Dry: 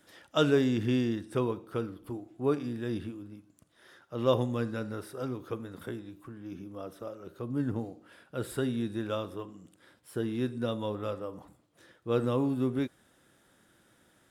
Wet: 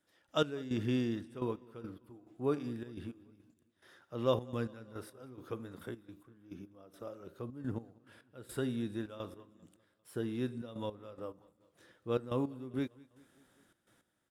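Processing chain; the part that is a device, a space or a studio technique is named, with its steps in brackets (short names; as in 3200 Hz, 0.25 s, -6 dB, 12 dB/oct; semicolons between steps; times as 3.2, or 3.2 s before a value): trance gate with a delay (step gate "..x..xxxx.x" 106 bpm -12 dB; feedback echo 0.198 s, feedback 60%, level -24 dB); gain -4.5 dB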